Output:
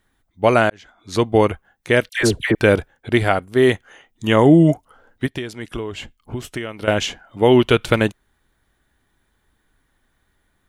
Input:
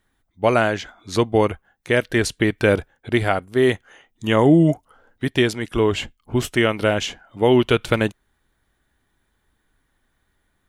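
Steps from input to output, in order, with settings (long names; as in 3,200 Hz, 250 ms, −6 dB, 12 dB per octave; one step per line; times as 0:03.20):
0:00.70–0:01.32: fade in
0:02.09–0:02.55: all-pass dispersion lows, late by 100 ms, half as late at 1,100 Hz
0:05.26–0:06.88: downward compressor 6 to 1, threshold −28 dBFS, peak gain reduction 14.5 dB
level +2.5 dB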